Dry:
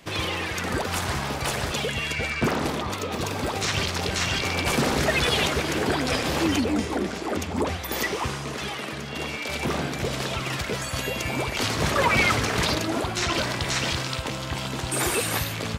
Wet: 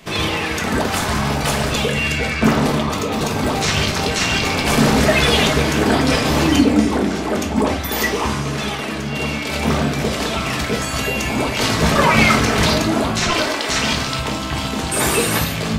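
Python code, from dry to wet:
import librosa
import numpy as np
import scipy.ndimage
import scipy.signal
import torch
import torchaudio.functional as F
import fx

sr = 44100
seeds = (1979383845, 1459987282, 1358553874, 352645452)

y = fx.steep_highpass(x, sr, hz=270.0, slope=36, at=(13.28, 13.69))
y = fx.room_shoebox(y, sr, seeds[0], volume_m3=300.0, walls='furnished', distance_m=1.5)
y = F.gain(torch.from_numpy(y), 5.0).numpy()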